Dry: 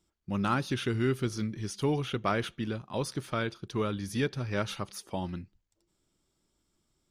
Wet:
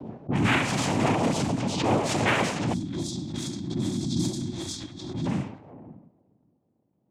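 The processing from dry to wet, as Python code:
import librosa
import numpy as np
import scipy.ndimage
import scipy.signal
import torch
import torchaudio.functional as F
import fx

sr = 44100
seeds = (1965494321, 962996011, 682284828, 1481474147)

p1 = x + fx.echo_single(x, sr, ms=578, db=-21.5, dry=0)
p2 = fx.rev_double_slope(p1, sr, seeds[0], early_s=0.6, late_s=2.3, knee_db=-18, drr_db=-1.5)
p3 = fx.noise_vocoder(p2, sr, seeds[1], bands=4)
p4 = fx.peak_eq(p3, sr, hz=190.0, db=-9.5, octaves=1.4, at=(4.5, 5.22))
p5 = fx.env_lowpass(p4, sr, base_hz=500.0, full_db=-25.0)
p6 = 10.0 ** (-29.0 / 20.0) * np.tanh(p5 / 10.0 ** (-29.0 / 20.0))
p7 = p5 + F.gain(torch.from_numpy(p6), -4.0).numpy()
p8 = fx.spec_box(p7, sr, start_s=2.73, length_s=2.54, low_hz=380.0, high_hz=3200.0, gain_db=-21)
y = fx.pre_swell(p8, sr, db_per_s=48.0)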